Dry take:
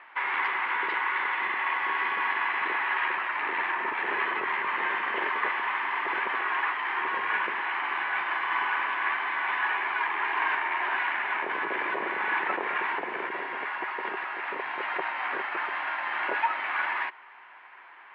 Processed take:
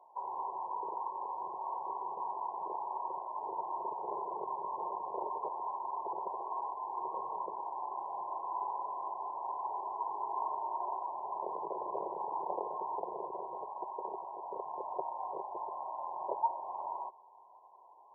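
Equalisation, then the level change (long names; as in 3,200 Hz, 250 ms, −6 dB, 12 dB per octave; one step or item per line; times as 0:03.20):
linear-phase brick-wall low-pass 1,100 Hz
parametric band 86 Hz +2.5 dB
phaser with its sweep stopped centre 630 Hz, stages 4
−1.5 dB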